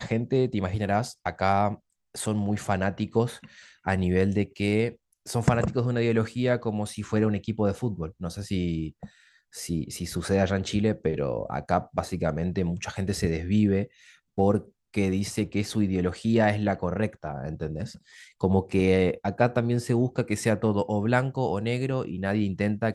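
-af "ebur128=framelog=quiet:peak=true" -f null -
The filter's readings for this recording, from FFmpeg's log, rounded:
Integrated loudness:
  I:         -26.9 LUFS
  Threshold: -37.2 LUFS
Loudness range:
  LRA:         3.5 LU
  Threshold: -47.2 LUFS
  LRA low:   -29.1 LUFS
  LRA high:  -25.6 LUFS
True peak:
  Peak:       -7.4 dBFS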